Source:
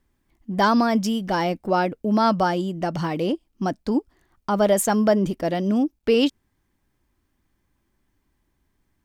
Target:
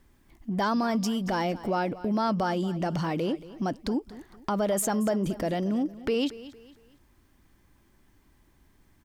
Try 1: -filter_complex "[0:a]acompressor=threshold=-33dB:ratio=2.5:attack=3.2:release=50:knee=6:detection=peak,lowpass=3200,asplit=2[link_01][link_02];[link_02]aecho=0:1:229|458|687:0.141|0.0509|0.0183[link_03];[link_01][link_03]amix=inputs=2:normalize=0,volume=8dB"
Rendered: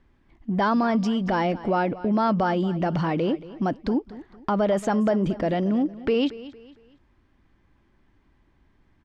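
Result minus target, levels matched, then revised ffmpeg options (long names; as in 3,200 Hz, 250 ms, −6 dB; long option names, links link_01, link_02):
downward compressor: peak gain reduction −4.5 dB; 4,000 Hz band −3.5 dB
-filter_complex "[0:a]acompressor=threshold=-40.5dB:ratio=2.5:attack=3.2:release=50:knee=6:detection=peak,asplit=2[link_01][link_02];[link_02]aecho=0:1:229|458|687:0.141|0.0509|0.0183[link_03];[link_01][link_03]amix=inputs=2:normalize=0,volume=8dB"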